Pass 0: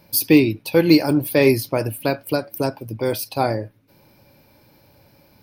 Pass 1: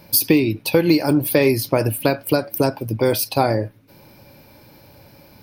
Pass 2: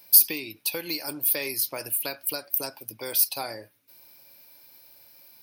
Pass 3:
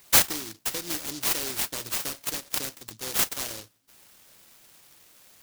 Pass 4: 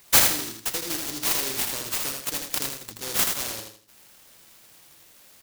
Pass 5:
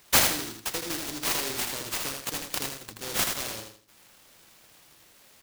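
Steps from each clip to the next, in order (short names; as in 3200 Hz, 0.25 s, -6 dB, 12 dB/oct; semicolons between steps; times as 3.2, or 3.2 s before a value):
compressor 5:1, threshold -19 dBFS, peak gain reduction 10.5 dB; gain +6.5 dB
tilt +4.5 dB/oct; gain -14 dB
noise-modulated delay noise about 4900 Hz, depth 0.4 ms
feedback echo 80 ms, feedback 32%, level -4.5 dB; gain +1 dB
half-waves squared off; gain -6.5 dB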